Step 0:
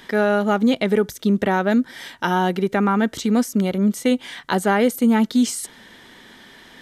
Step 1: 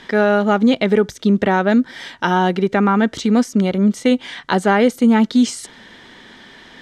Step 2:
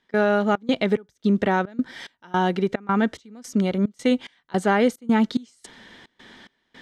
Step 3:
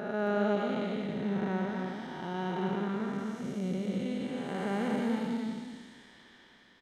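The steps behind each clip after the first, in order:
low-pass filter 6,400 Hz 12 dB per octave; level +3.5 dB
gate pattern ".xxx.xx." 109 BPM −24 dB; level −5 dB
spectrum smeared in time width 482 ms; loudspeakers that aren't time-aligned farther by 67 metres −10 dB, 93 metres −5 dB; level −6 dB

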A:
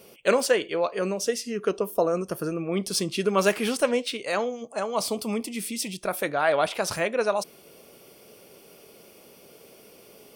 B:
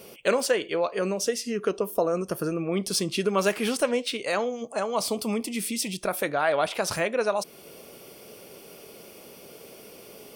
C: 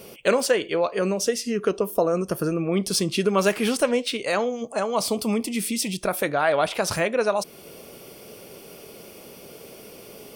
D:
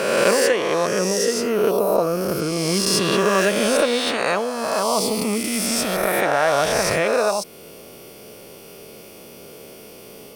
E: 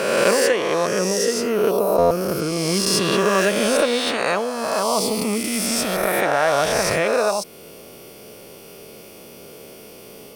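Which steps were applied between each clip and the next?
downward compressor 1.5 to 1, threshold −35 dBFS, peak gain reduction 7.5 dB; level +4.5 dB
low-shelf EQ 170 Hz +5 dB; level +2.5 dB
peak hold with a rise ahead of every peak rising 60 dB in 1.87 s; level −1 dB
buffer that repeats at 0:01.98, samples 512, times 10

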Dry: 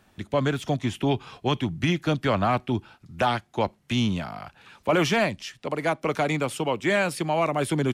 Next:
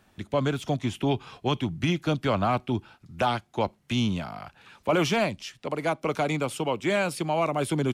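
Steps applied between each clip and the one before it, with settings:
dynamic equaliser 1,800 Hz, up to −7 dB, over −48 dBFS, Q 5.1
level −1.5 dB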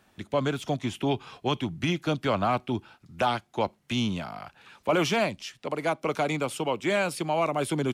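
low-shelf EQ 140 Hz −6.5 dB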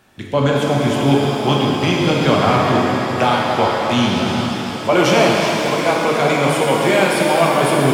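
reverb with rising layers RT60 3.8 s, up +7 semitones, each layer −8 dB, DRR −3 dB
level +7.5 dB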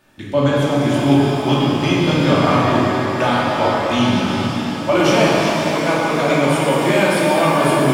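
rectangular room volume 600 cubic metres, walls furnished, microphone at 2.6 metres
level −4.5 dB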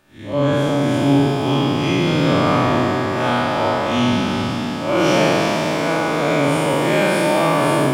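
spectrum smeared in time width 116 ms

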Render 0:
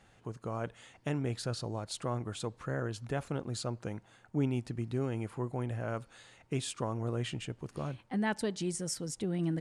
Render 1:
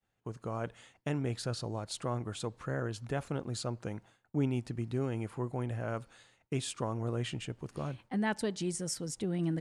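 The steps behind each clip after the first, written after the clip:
downward expander −50 dBFS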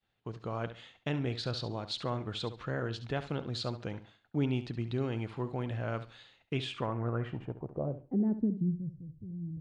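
low-pass filter sweep 3,800 Hz → 100 Hz, 0:06.46–0:09.10
flutter between parallel walls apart 11.9 metres, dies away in 0.33 s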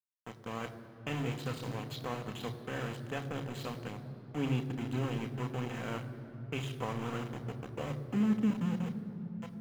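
centre clipping without the shift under −34 dBFS
convolution reverb RT60 3.6 s, pre-delay 3 ms, DRR 6.5 dB
level −9 dB

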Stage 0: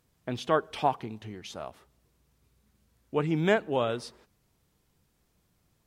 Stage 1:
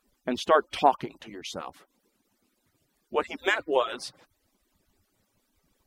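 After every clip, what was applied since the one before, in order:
harmonic-percussive split with one part muted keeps percussive
level +5.5 dB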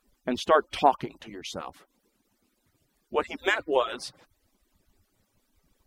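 low-shelf EQ 85 Hz +7 dB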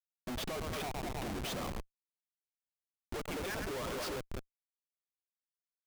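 echo with a time of its own for lows and highs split 560 Hz, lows 201 ms, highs 104 ms, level −11.5 dB
downward compressor 12 to 1, threshold −30 dBFS, peak gain reduction 16.5 dB
comparator with hysteresis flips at −40 dBFS
level +1.5 dB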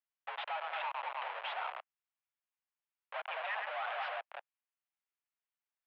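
one scale factor per block 7 bits
single-sideband voice off tune +190 Hz 500–2,900 Hz
level +3.5 dB

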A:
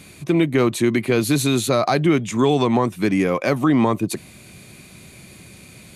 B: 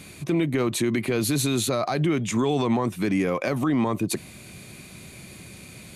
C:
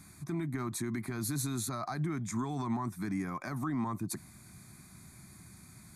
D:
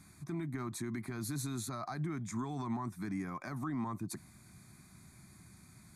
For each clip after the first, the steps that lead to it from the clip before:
brickwall limiter −15 dBFS, peak gain reduction 9 dB
phaser with its sweep stopped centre 1,200 Hz, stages 4; level −7.5 dB
high-shelf EQ 11,000 Hz −6.5 dB; level −3.5 dB

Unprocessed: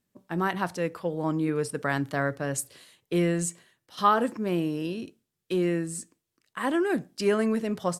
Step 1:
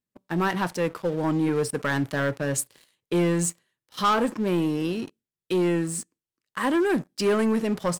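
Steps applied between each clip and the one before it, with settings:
notch filter 700 Hz, Q 12
leveller curve on the samples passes 3
level −6.5 dB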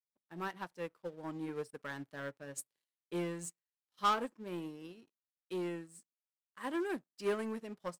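low-shelf EQ 190 Hz −7 dB
expander for the loud parts 2.5 to 1, over −36 dBFS
level −7 dB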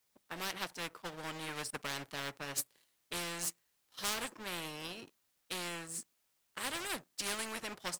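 every bin compressed towards the loudest bin 4 to 1
level +3.5 dB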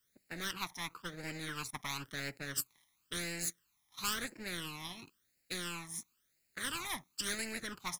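all-pass phaser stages 12, 0.97 Hz, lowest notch 470–1,100 Hz
level +3 dB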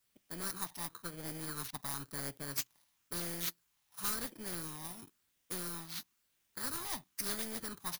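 samples in bit-reversed order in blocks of 16 samples

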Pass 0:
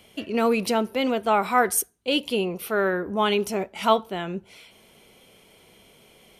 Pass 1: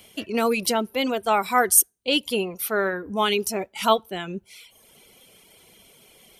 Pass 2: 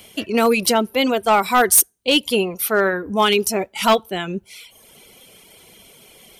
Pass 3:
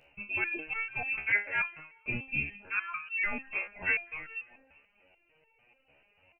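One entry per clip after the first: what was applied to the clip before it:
reverb reduction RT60 0.84 s; high-shelf EQ 4,200 Hz +9.5 dB
hard clipping −14 dBFS, distortion −13 dB; level +6 dB
repeating echo 198 ms, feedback 48%, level −19 dB; voice inversion scrambler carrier 2,900 Hz; step-sequenced resonator 6.8 Hz 71–450 Hz; level −4.5 dB

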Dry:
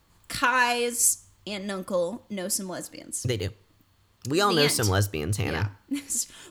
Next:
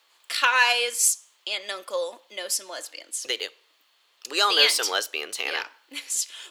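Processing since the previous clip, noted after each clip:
high-pass filter 450 Hz 24 dB per octave
parametric band 3,200 Hz +10.5 dB 1.6 octaves
level −1.5 dB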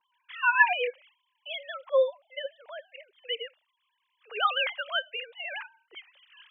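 three sine waves on the formant tracks
level −4.5 dB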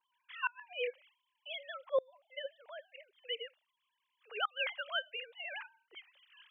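gate with flip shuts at −15 dBFS, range −30 dB
level −6.5 dB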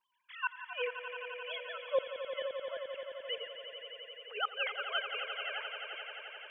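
echo that builds up and dies away 87 ms, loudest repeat 5, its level −11 dB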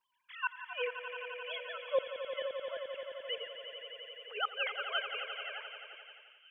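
fade-out on the ending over 1.52 s
delay with a high-pass on its return 374 ms, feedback 69%, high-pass 2,900 Hz, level −14 dB

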